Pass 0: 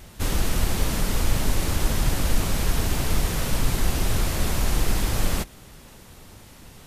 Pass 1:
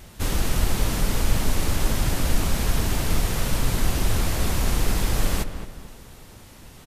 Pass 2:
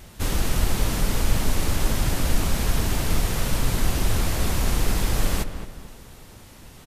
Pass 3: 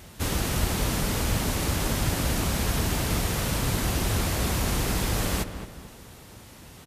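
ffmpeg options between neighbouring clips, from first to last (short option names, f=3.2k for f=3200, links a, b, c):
-filter_complex "[0:a]asplit=2[a][b];[b]adelay=219,lowpass=f=2k:p=1,volume=-9dB,asplit=2[c][d];[d]adelay=219,lowpass=f=2k:p=1,volume=0.39,asplit=2[e][f];[f]adelay=219,lowpass=f=2k:p=1,volume=0.39,asplit=2[g][h];[h]adelay=219,lowpass=f=2k:p=1,volume=0.39[i];[a][c][e][g][i]amix=inputs=5:normalize=0"
-af anull
-af "highpass=55"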